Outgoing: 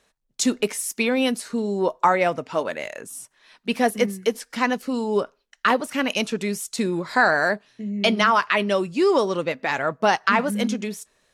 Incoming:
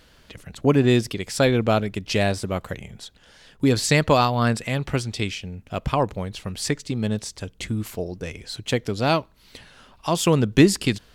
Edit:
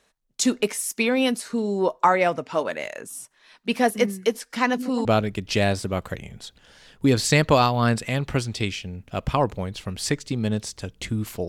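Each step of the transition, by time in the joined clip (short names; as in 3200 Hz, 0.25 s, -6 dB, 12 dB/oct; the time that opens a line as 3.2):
outgoing
4.62–5.05 delay with a stepping band-pass 0.117 s, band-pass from 240 Hz, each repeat 0.7 oct, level -5.5 dB
5.05 switch to incoming from 1.64 s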